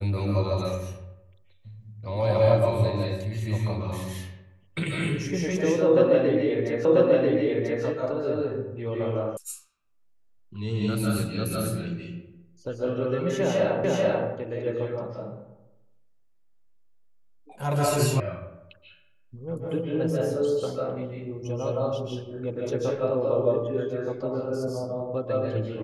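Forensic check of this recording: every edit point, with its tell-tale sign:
0:06.85: the same again, the last 0.99 s
0:09.37: cut off before it has died away
0:13.84: the same again, the last 0.44 s
0:18.20: cut off before it has died away

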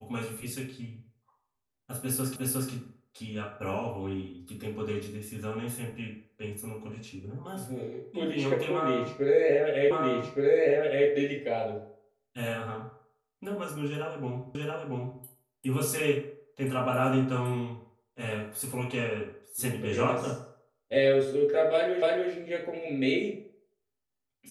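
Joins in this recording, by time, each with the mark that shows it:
0:02.36: the same again, the last 0.36 s
0:09.91: the same again, the last 1.17 s
0:14.55: the same again, the last 0.68 s
0:22.02: the same again, the last 0.29 s

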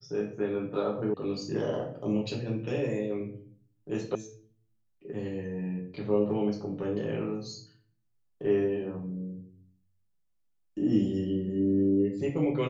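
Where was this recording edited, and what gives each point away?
0:01.14: cut off before it has died away
0:04.15: cut off before it has died away

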